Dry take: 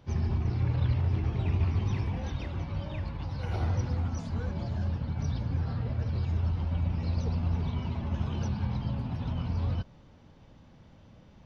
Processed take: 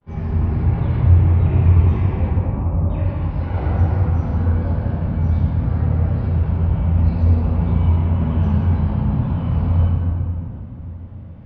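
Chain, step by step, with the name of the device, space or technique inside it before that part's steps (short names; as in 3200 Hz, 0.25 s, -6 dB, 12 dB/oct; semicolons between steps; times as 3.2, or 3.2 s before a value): hearing-loss simulation (LPF 2100 Hz 12 dB/oct; expander -51 dBFS); 2.26–2.9 steep low-pass 1300 Hz 72 dB/oct; shoebox room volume 130 m³, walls hard, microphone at 1.3 m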